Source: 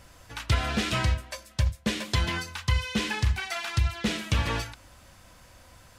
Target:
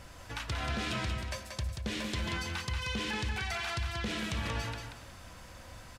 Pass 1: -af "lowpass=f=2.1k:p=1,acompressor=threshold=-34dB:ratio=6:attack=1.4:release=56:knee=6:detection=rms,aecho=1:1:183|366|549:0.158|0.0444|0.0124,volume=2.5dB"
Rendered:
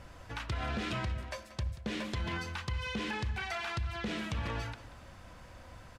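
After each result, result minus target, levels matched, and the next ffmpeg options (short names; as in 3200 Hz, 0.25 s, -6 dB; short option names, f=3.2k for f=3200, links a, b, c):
echo-to-direct -10.5 dB; 8000 Hz band -5.5 dB
-af "lowpass=f=2.1k:p=1,acompressor=threshold=-34dB:ratio=6:attack=1.4:release=56:knee=6:detection=rms,aecho=1:1:183|366|549|732:0.531|0.149|0.0416|0.0117,volume=2.5dB"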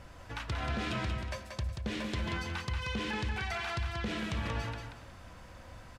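8000 Hz band -5.5 dB
-af "lowpass=f=7.1k:p=1,acompressor=threshold=-34dB:ratio=6:attack=1.4:release=56:knee=6:detection=rms,aecho=1:1:183|366|549|732:0.531|0.149|0.0416|0.0117,volume=2.5dB"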